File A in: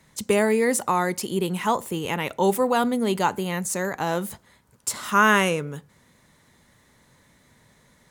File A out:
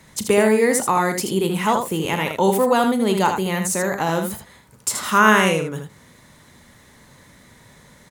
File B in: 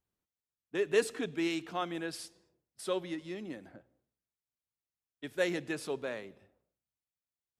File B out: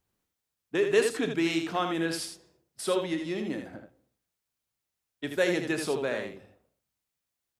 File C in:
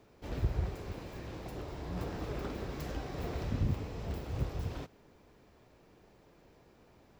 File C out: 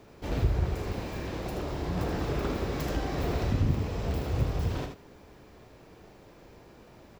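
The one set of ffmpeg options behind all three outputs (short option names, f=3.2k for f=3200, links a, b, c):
-filter_complex "[0:a]asplit=2[a][b];[b]acompressor=threshold=-35dB:ratio=6,volume=1dB[c];[a][c]amix=inputs=2:normalize=0,aecho=1:1:37|79:0.237|0.473,volume=1.5dB"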